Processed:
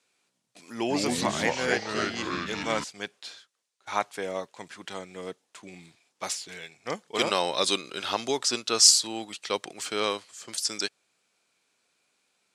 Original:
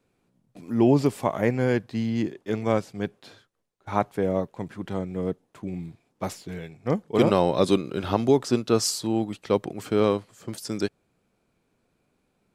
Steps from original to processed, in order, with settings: weighting filter ITU-R 468; 0.77–2.84 echoes that change speed 0.131 s, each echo -3 st, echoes 3; gain -1.5 dB

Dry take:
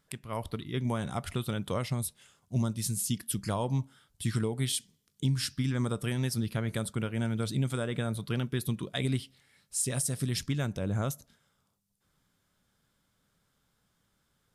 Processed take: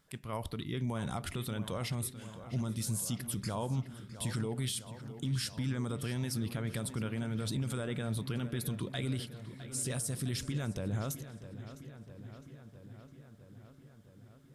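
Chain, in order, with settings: limiter -28.5 dBFS, peak gain reduction 11 dB; on a send: darkening echo 0.659 s, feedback 73%, low-pass 4100 Hz, level -12.5 dB; on the sum: gain +1.5 dB

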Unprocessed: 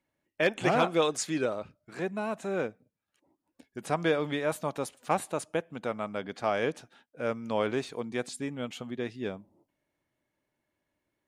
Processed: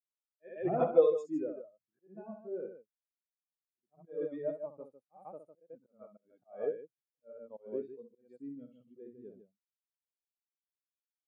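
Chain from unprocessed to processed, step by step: loudspeakers at several distances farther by 22 m -4 dB, 53 m -4 dB; auto swell 0.18 s; spectral expander 2.5:1; gain -1.5 dB

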